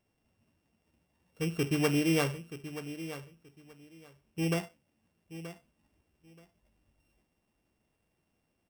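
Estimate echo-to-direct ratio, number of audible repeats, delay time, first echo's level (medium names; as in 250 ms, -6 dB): -13.0 dB, 2, 928 ms, -13.0 dB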